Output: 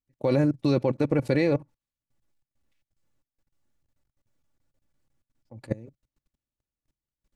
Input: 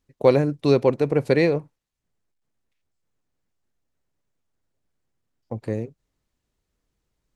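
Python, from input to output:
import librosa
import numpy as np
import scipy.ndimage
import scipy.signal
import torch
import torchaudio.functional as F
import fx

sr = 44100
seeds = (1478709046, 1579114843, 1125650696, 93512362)

y = x + 0.5 * np.pad(x, (int(3.5 * sr / 1000.0), 0))[:len(x)]
y = fx.level_steps(y, sr, step_db=24)
y = fx.peak_eq(y, sr, hz=130.0, db=10.5, octaves=0.62)
y = y * librosa.db_to_amplitude(1.5)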